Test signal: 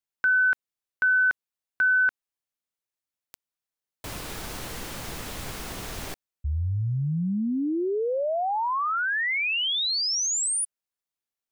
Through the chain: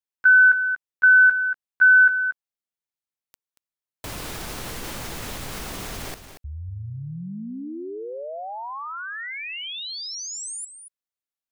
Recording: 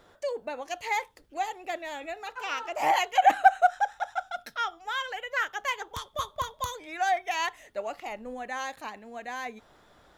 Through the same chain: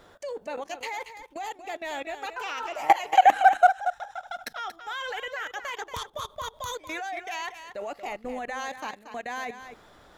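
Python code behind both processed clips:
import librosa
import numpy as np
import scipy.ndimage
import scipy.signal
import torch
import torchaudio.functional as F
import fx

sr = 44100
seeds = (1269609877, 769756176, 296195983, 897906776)

p1 = fx.level_steps(x, sr, step_db=21)
p2 = p1 + fx.echo_single(p1, sr, ms=232, db=-10.5, dry=0)
y = p2 * librosa.db_to_amplitude(8.5)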